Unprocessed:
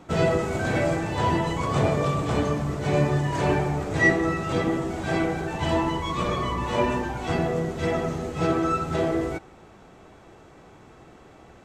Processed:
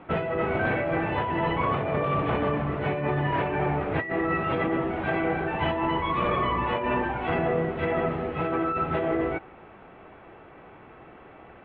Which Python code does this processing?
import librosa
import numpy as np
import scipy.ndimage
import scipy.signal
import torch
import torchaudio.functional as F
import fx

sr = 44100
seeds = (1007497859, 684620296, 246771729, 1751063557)

y = scipy.signal.sosfilt(scipy.signal.butter(6, 2900.0, 'lowpass', fs=sr, output='sos'), x)
y = fx.low_shelf(y, sr, hz=310.0, db=-7.5)
y = fx.over_compress(y, sr, threshold_db=-28.0, ratio=-1.0)
y = F.gain(torch.from_numpy(y), 2.5).numpy()